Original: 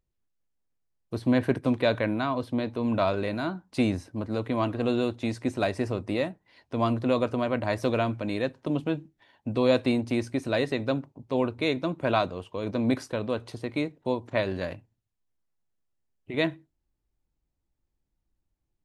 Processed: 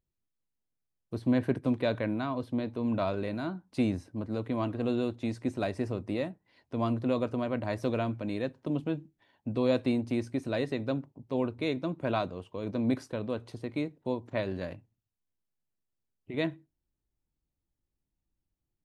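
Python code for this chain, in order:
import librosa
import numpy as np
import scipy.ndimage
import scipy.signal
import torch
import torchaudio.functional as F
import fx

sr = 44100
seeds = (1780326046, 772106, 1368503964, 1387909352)

y = fx.peak_eq(x, sr, hz=180.0, db=5.0, octaves=3.0)
y = y * 10.0 ** (-7.5 / 20.0)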